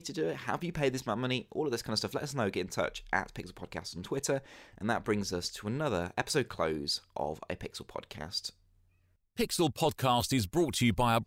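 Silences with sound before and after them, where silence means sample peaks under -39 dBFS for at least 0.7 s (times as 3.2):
8.49–9.38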